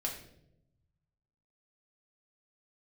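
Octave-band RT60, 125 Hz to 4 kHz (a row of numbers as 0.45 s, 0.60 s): 1.9 s, 1.2 s, 1.0 s, 0.60 s, 0.55 s, 0.55 s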